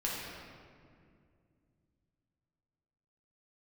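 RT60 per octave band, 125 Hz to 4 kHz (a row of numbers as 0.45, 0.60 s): 3.7, 3.3, 2.5, 2.0, 1.8, 1.3 s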